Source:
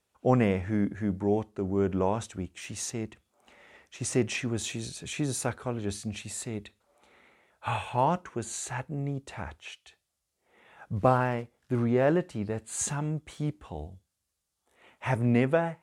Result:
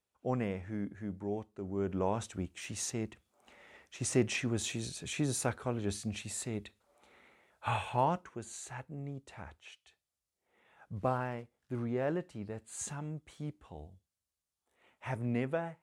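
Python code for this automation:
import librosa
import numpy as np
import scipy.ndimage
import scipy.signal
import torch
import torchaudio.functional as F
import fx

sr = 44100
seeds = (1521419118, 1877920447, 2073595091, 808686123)

y = fx.gain(x, sr, db=fx.line((1.56, -10.5), (2.32, -2.5), (7.9, -2.5), (8.41, -9.5)))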